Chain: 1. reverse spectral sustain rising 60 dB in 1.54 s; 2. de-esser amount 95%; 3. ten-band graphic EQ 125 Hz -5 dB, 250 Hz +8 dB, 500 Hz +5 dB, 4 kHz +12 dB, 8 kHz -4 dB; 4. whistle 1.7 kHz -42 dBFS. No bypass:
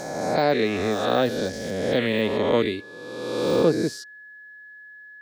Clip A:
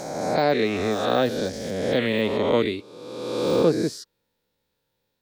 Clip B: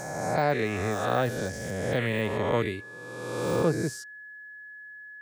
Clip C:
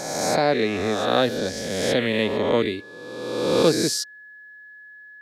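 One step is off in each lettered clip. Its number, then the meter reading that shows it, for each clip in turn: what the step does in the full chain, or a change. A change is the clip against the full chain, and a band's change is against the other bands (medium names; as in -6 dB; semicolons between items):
4, momentary loudness spread change -12 LU; 3, 4 kHz band -7.0 dB; 2, momentary loudness spread change -11 LU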